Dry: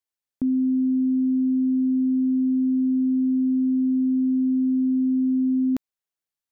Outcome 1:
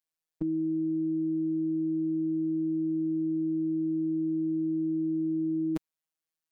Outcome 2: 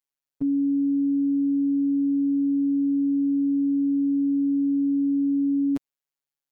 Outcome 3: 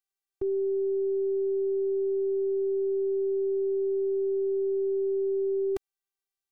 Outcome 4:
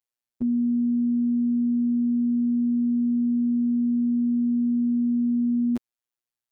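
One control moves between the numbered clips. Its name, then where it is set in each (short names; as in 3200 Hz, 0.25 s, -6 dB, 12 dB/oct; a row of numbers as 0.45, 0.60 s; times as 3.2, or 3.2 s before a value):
robotiser, frequency: 160, 140, 390, 120 Hz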